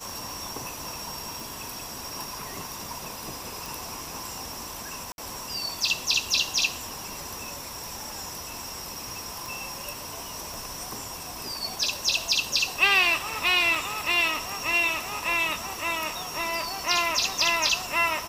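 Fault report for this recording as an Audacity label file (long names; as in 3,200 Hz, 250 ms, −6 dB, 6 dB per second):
1.400000	1.400000	click
3.660000	3.660000	click
5.120000	5.180000	drop-out 61 ms
9.460000	9.460000	click
10.540000	10.540000	click
13.750000	13.750000	drop-out 3.1 ms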